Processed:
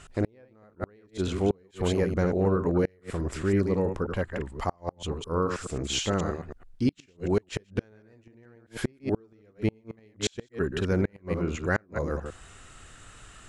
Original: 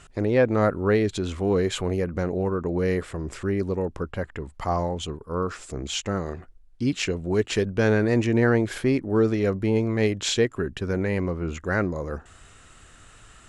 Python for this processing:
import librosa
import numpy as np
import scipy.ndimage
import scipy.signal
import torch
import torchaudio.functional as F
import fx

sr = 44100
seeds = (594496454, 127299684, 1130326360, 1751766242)

y = fx.reverse_delay(x, sr, ms=107, wet_db=-6)
y = fx.gate_flip(y, sr, shuts_db=-14.0, range_db=-36)